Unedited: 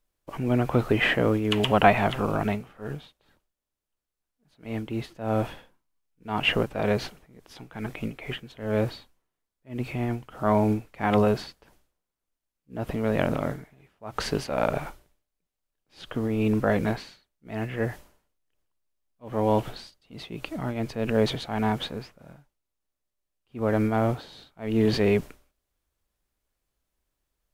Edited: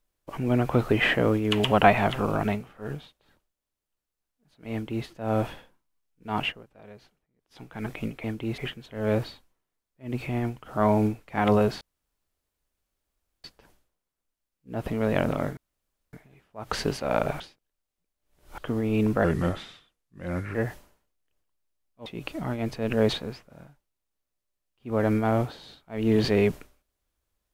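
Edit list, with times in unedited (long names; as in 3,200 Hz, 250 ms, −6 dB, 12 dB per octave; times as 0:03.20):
0:04.72–0:05.06: duplicate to 0:08.24
0:06.41–0:07.62: duck −23 dB, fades 0.12 s
0:11.47: splice in room tone 1.63 s
0:13.60: splice in room tone 0.56 s
0:14.87–0:16.05: reverse
0:16.71–0:17.77: play speed 81%
0:19.28–0:20.23: remove
0:21.31–0:21.83: remove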